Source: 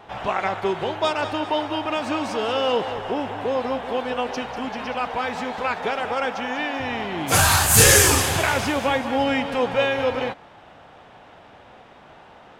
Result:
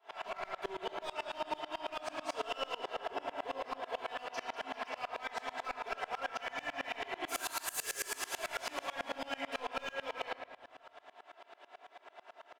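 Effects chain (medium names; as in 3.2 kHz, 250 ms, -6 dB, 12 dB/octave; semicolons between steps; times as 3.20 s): Bessel high-pass 570 Hz, order 8; comb 3 ms, depth 55%; compression 8:1, threshold -27 dBFS, peak gain reduction 17 dB; overload inside the chain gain 26 dB; simulated room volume 780 m³, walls mixed, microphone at 1.6 m; sawtooth tremolo in dB swelling 9.1 Hz, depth 26 dB; trim -4 dB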